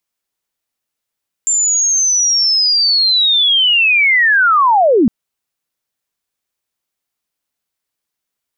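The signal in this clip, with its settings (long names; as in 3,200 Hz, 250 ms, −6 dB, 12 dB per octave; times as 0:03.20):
glide linear 7,300 Hz → 200 Hz −11 dBFS → −7 dBFS 3.61 s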